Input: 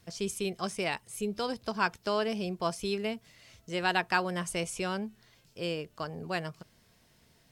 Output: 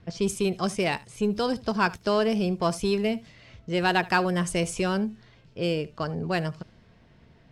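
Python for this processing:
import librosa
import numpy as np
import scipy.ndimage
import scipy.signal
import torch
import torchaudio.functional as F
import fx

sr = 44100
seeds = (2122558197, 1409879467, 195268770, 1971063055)

p1 = fx.env_lowpass(x, sr, base_hz=2600.0, full_db=-28.5)
p2 = fx.low_shelf(p1, sr, hz=450.0, db=6.0)
p3 = 10.0 ** (-29.5 / 20.0) * np.tanh(p2 / 10.0 ** (-29.5 / 20.0))
p4 = p2 + (p3 * 10.0 ** (-6.0 / 20.0))
p5 = p4 + 10.0 ** (-21.0 / 20.0) * np.pad(p4, (int(74 * sr / 1000.0), 0))[:len(p4)]
y = p5 * 10.0 ** (2.0 / 20.0)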